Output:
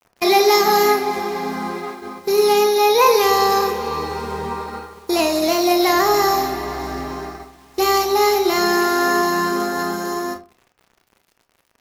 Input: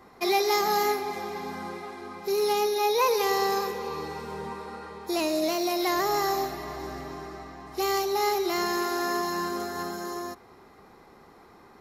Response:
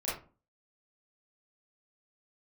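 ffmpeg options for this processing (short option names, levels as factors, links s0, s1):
-filter_complex "[0:a]agate=range=0.178:threshold=0.0112:ratio=16:detection=peak,acrusher=bits=9:mix=0:aa=0.000001,asplit=2[s0][s1];[1:a]atrim=start_sample=2205,asetrate=48510,aresample=44100[s2];[s1][s2]afir=irnorm=-1:irlink=0,volume=0.376[s3];[s0][s3]amix=inputs=2:normalize=0,volume=2.37"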